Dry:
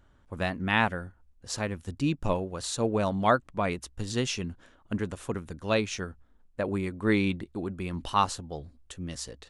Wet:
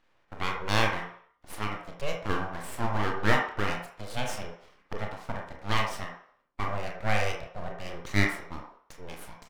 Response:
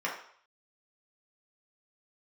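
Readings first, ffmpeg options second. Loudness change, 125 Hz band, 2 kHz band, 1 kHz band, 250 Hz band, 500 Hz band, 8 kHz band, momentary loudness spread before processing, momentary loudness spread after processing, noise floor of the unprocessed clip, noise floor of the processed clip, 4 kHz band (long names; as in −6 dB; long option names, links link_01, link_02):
−1.5 dB, −1.0 dB, +2.0 dB, −1.0 dB, −6.5 dB, −4.0 dB, −5.5 dB, 14 LU, 18 LU, −61 dBFS, −68 dBFS, 0.0 dB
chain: -filter_complex "[0:a]acrossover=split=170 5300:gain=0.0631 1 0.0794[link_01][link_02][link_03];[link_01][link_02][link_03]amix=inputs=3:normalize=0,aeval=exprs='abs(val(0))':channel_layout=same,asplit=2[link_04][link_05];[link_05]adelay=29,volume=-8.5dB[link_06];[link_04][link_06]amix=inputs=2:normalize=0,asplit=2[link_07][link_08];[1:a]atrim=start_sample=2205,adelay=41[link_09];[link_08][link_09]afir=irnorm=-1:irlink=0,volume=-9.5dB[link_10];[link_07][link_10]amix=inputs=2:normalize=0"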